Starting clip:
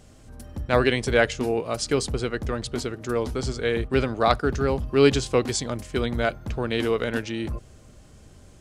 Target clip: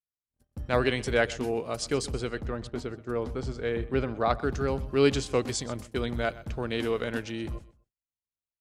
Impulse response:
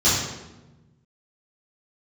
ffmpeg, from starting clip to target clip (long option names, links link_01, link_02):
-filter_complex "[0:a]asettb=1/sr,asplit=3[link_01][link_02][link_03];[link_01]atrim=end=2.384[link_04];[link_02]atrim=start=2.38:end=4.42,asetpts=PTS-STARTPTS,afade=type=in:duration=0.004:curve=qsin,afade=type=out:start_time=2.036:duration=0.004:curve=qsin,highshelf=frequency=3500:gain=-12[link_05];[link_03]atrim=start=4.416[link_06];[link_04][link_05]acrossfade=duration=0.004:curve1=hsin:curve2=qsin[link_07];[link_07][link_06]acrossfade=duration=0.004:curve1=qsin:curve2=hsin,agate=range=-54dB:threshold=-36dB:ratio=16:detection=peak,aecho=1:1:126|252:0.119|0.0297,volume=-5dB"